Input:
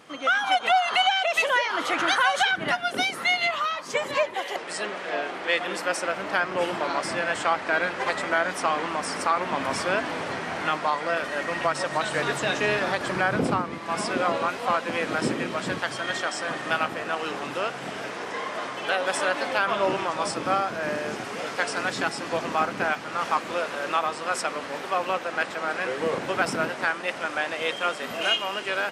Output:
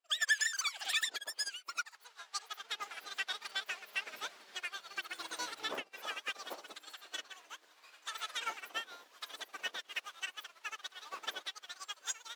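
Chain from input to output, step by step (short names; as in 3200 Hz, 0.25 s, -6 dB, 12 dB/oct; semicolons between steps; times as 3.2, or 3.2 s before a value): speed mistake 33 rpm record played at 78 rpm; upward expander 2.5:1, over -41 dBFS; gain -7 dB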